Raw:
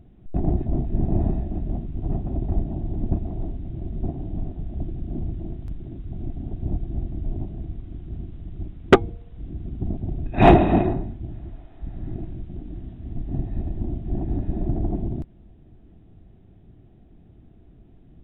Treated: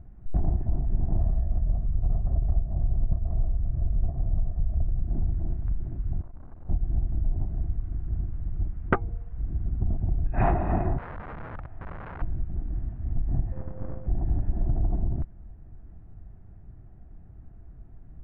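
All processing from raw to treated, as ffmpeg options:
-filter_complex "[0:a]asettb=1/sr,asplit=3[a][b][c];[a]atrim=end=1.184[d];[b]atrim=start=1.18:end=5.02,asetpts=PTS-STARTPTS,afade=t=in:d=0.004:c=qsin,afade=t=out:st=3.836:d=0.004:c=qsin,lowpass=f=1.8k:p=1,aecho=1:1:1.7:0.46,atrim=end_sample=169344[e];[c]atrim=start=5.016[f];[d][e]acrossfade=d=0.004:c1=hsin:c2=qsin[g];[g][f]acrossfade=d=0.004:c1=qsin:c2=hsin,asettb=1/sr,asplit=3[h][i][j];[h]atrim=end=6.214[k];[i]atrim=start=6.21:end=6.69,asetpts=PTS-STARTPTS,afade=t=in:d=0.004:c=qsin,afade=t=out:st=0.476:d=0.004:c=qsin,lowshelf=f=180:g=-7.5,acompressor=threshold=-35dB:ratio=2.5:attack=3.2:release=140:knee=1:detection=peak,aeval=exprs='(tanh(158*val(0)+0.75)-tanh(0.75))/158':c=same[l];[j]atrim=start=6.686[m];[k][l]acrossfade=d=0.004:c1=hsin:c2=qsin[n];[n][m]acrossfade=d=0.004:c1=qsin:c2=hsin,asettb=1/sr,asplit=3[o][p][q];[o]atrim=end=10.984[r];[p]atrim=start=10.98:end=12.22,asetpts=PTS-STARTPTS,afade=t=in:d=0.004:c=qsin,afade=t=out:st=1.236:d=0.004:c=qsin,equalizer=f=90:t=o:w=0.46:g=7.5,acompressor=threshold=-31dB:ratio=3:attack=3.2:release=140:knee=1:detection=peak,aeval=exprs='(mod(47.3*val(0)+1,2)-1)/47.3':c=same[s];[q]atrim=start=12.216[t];[r][s]acrossfade=d=0.004:c1=hsin:c2=qsin[u];[u][t]acrossfade=d=0.004:c1=qsin:c2=hsin,asettb=1/sr,asplit=3[v][w][x];[v]atrim=end=13.524[y];[w]atrim=start=13.52:end=14.07,asetpts=PTS-STARTPTS,afade=t=in:d=0.004:c=qsin,afade=t=out:st=0.546:d=0.004:c=qsin,highpass=110,aeval=exprs='max(val(0),0)':c=same,aeval=exprs='val(0)+0.00794*sin(2*PI*520*n/s)':c=same[z];[x]atrim=start=14.066[aa];[y][z]acrossfade=d=0.004:c1=hsin:c2=qsin[ab];[ab][aa]acrossfade=d=0.004:c1=qsin:c2=hsin,lowpass=f=1.6k:w=0.5412,lowpass=f=1.6k:w=1.3066,equalizer=f=320:t=o:w=2.7:g=-15,acompressor=threshold=-28dB:ratio=5,volume=8dB"

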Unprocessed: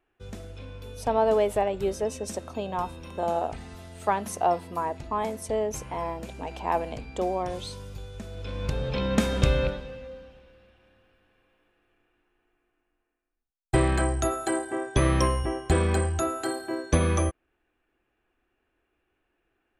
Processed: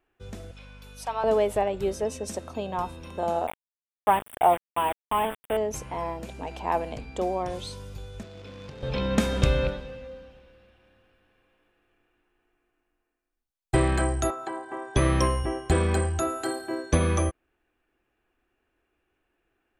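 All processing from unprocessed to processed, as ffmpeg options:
-filter_complex "[0:a]asettb=1/sr,asplit=3[a][b][c];[a]atrim=end=0.514[d];[b]atrim=start=0.51:end=1.24,asetpts=PTS-STARTPTS,afade=t=in:d=0.004:c=qsin,afade=t=out:st=0.726:d=0.004:c=qsin,highpass=880,aecho=1:1:5.3:0.43,atrim=end_sample=32193,aeval=exprs='val(0)+0.00501*(sin(2*PI*50*n/s)+sin(2*PI*2*50*n/s)/2+sin(2*PI*3*50*n/s)/3+sin(2*PI*4*50*n/s)/4+sin(2*PI*5*50*n/s)/5)':c=same[e];[c]atrim=start=1.236[f];[d][e]acrossfade=d=0.004:c1=hsin:c2=qsin[g];[g][f]acrossfade=d=0.004:c1=qsin:c2=hsin,asettb=1/sr,asplit=3[h][i][j];[h]atrim=end=3.474[k];[i]atrim=start=3.47:end=5.57,asetpts=PTS-STARTPTS,afade=t=in:d=0.004:c=qsin,afade=t=out:st=2.096:d=0.004:c=qsin,equalizer=f=870:t=o:w=0.76:g=5.5,aeval=exprs='val(0)*gte(abs(val(0)),0.0447)':c=same,asuperstop=centerf=5400:order=20:qfactor=1.2[l];[j]atrim=start=5.566[m];[k][l]acrossfade=d=0.004:c1=hsin:c2=qsin[n];[n][m]acrossfade=d=0.004:c1=qsin:c2=hsin,asettb=1/sr,asplit=3[o][p][q];[o]atrim=end=8.234[r];[p]atrim=start=8.23:end=8.83,asetpts=PTS-STARTPTS,afade=t=in:d=0.004:c=qsin,afade=t=out:st=0.596:d=0.004:c=qsin,acrossover=split=500|3000[s][t][u];[s]acompressor=threshold=-36dB:ratio=4[v];[t]acompressor=threshold=-52dB:ratio=4[w];[u]acompressor=threshold=-54dB:ratio=4[x];[v][w][x]amix=inputs=3:normalize=0,acrusher=bits=3:mode=log:mix=0:aa=0.000001,highpass=120,lowpass=4.5k[y];[q]atrim=start=8.826[z];[r][y]acrossfade=d=0.004:c1=hsin:c2=qsin[aa];[aa][z]acrossfade=d=0.004:c1=qsin:c2=hsin,asettb=1/sr,asplit=3[ab][ac][ad];[ab]atrim=end=14.304[ae];[ac]atrim=start=14.3:end=14.95,asetpts=PTS-STARTPTS,afade=t=in:d=0.004:c=qsin,afade=t=out:st=0.646:d=0.004:c=qsin,equalizer=f=990:w=2.9:g=10.5,acrossover=split=190|450|3100[af][ag][ah][ai];[af]acompressor=threshold=-52dB:ratio=3[aj];[ag]acompressor=threshold=-44dB:ratio=3[ak];[ah]acompressor=threshold=-36dB:ratio=3[al];[ai]acompressor=threshold=-54dB:ratio=3[am];[aj][ak][al][am]amix=inputs=4:normalize=0,highpass=140,lowpass=6.1k[an];[ad]atrim=start=14.946[ao];[ae][an]acrossfade=d=0.004:c1=hsin:c2=qsin[ap];[ap][ao]acrossfade=d=0.004:c1=qsin:c2=hsin"

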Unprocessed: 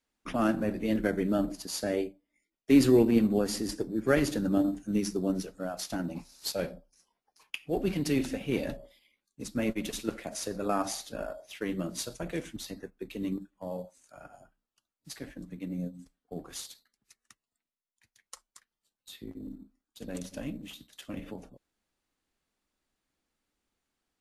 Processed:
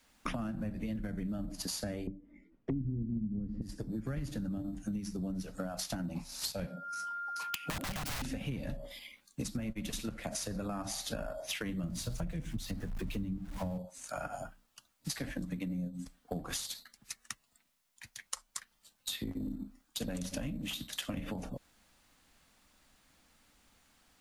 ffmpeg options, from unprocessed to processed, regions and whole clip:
-filter_complex "[0:a]asettb=1/sr,asplit=3[a][b][c];[a]atrim=end=2.074[d];[b]atrim=start=2.07:end=3.62,asetpts=PTS-STARTPTS,afade=t=in:d=0.004:c=qsin,afade=t=out:st=1.546:d=0.004:c=qsin,lowpass=1.4k,lowshelf=f=520:t=q:w=1.5:g=10.5[e];[c]atrim=start=3.616[f];[d][e]acrossfade=d=0.004:c1=hsin:c2=qsin[g];[g][f]acrossfade=d=0.004:c1=qsin:c2=hsin,asettb=1/sr,asplit=3[h][i][j];[h]atrim=end=6.674[k];[i]atrim=start=6.67:end=8.22,asetpts=PTS-STARTPTS,afade=t=in:d=0.004:c=qsin,afade=t=out:st=1.546:d=0.004:c=qsin,highpass=f=130:w=0.5412,highpass=f=130:w=1.3066,aeval=exprs='val(0)+0.00224*sin(2*PI*1400*n/s)':c=same,aeval=exprs='(mod(28.2*val(0)+1,2)-1)/28.2':c=same[l];[j]atrim=start=8.216[m];[k][l]acrossfade=d=0.004:c1=hsin:c2=qsin[n];[n][m]acrossfade=d=0.004:c1=qsin:c2=hsin,asettb=1/sr,asplit=3[o][p][q];[o]atrim=end=11.834[r];[p]atrim=start=11.83:end=13.78,asetpts=PTS-STARTPTS,afade=t=in:d=0.004:c=qsin,afade=t=out:st=1.946:d=0.004:c=qsin,aeval=exprs='val(0)+0.5*0.00447*sgn(val(0))':c=same,lowshelf=f=210:g=11[s];[q]atrim=start=13.776[t];[r][s]acrossfade=d=0.004:c1=hsin:c2=qsin[u];[u][t]acrossfade=d=0.004:c1=qsin:c2=hsin,acrossover=split=180[v][w];[w]acompressor=threshold=-41dB:ratio=10[x];[v][x]amix=inputs=2:normalize=0,equalizer=f=380:w=2.3:g=-9,acompressor=threshold=-52dB:ratio=8,volume=17dB"

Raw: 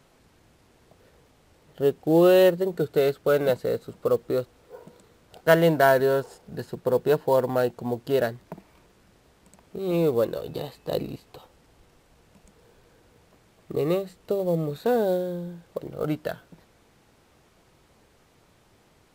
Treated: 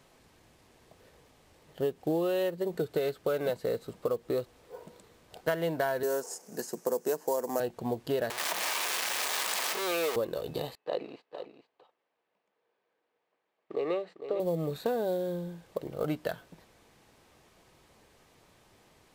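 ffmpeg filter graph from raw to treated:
-filter_complex "[0:a]asettb=1/sr,asplit=3[a][b][c];[a]atrim=end=6.034[d];[b]atrim=start=6.03:end=7.6,asetpts=PTS-STARTPTS,afade=t=in:d=0.004:c=qsin,afade=t=out:st=1.566:d=0.004:c=qsin,highpass=f=200:w=0.5412,highpass=f=200:w=1.3066,highshelf=f=4.8k:t=q:w=3:g=9[e];[c]atrim=start=7.596[f];[d][e]acrossfade=d=0.004:c1=hsin:c2=qsin[g];[g][f]acrossfade=d=0.004:c1=qsin:c2=hsin,asettb=1/sr,asplit=3[h][i][j];[h]atrim=end=8.304[k];[i]atrim=start=8.3:end=10.16,asetpts=PTS-STARTPTS,afade=t=in:d=0.004:c=qsin,afade=t=out:st=1.856:d=0.004:c=qsin,aeval=exprs='val(0)+0.5*0.0447*sgn(val(0))':c=same,highpass=840,acontrast=88[l];[j]atrim=start=10.156[m];[k][l]acrossfade=d=0.004:c1=hsin:c2=qsin[n];[n][m]acrossfade=d=0.004:c1=qsin:c2=hsin,asettb=1/sr,asplit=3[o][p][q];[o]atrim=end=10.754[r];[p]atrim=start=10.75:end=14.4,asetpts=PTS-STARTPTS,afade=t=in:d=0.004:c=qsin,afade=t=out:st=3.646:d=0.004:c=qsin,agate=range=-17dB:threshold=-50dB:ratio=16:release=100:detection=peak,highpass=410,lowpass=2.8k,aecho=1:1:452:0.282,atrim=end_sample=160965[s];[q]atrim=start=14.396[t];[r][s]acrossfade=d=0.004:c1=hsin:c2=qsin[u];[u][t]acrossfade=d=0.004:c1=qsin:c2=hsin,lowshelf=f=360:g=-4.5,bandreject=f=1.4k:w=13,acompressor=threshold=-26dB:ratio=10"

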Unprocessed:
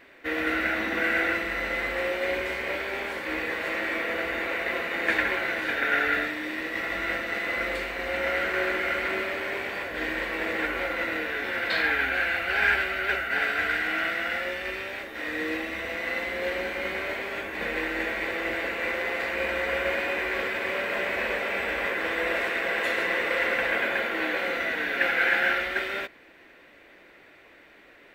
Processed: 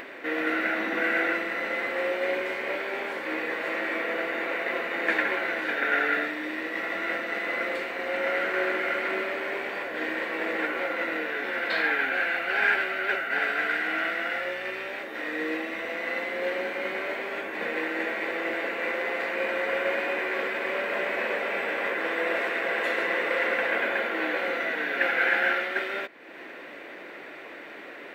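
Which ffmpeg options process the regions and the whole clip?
-filter_complex "[0:a]asettb=1/sr,asplit=3[a][b][c];[a]atrim=end=14.334[d];[b]atrim=start=14.33:end=14.88,asetpts=PTS-STARTPTS,afade=t=in:d=0.004:c=qsin,afade=t=out:st=0.546:d=0.004:c=qsin,highpass=280,aeval=exprs='val(0)+0.00447*(sin(2*PI*60*n/s)+sin(2*PI*2*60*n/s)/2+sin(2*PI*3*60*n/s)/3+sin(2*PI*4*60*n/s)/4+sin(2*PI*5*60*n/s)/5)':c=same[e];[c]atrim=start=14.876[f];[d][e]acrossfade=d=0.004:c1=hsin:c2=qsin[g];[g][f]acrossfade=d=0.004:c1=qsin:c2=hsin,highpass=230,highshelf=f=2.9k:g=-8,acompressor=mode=upward:threshold=-32dB:ratio=2.5,volume=1.5dB"

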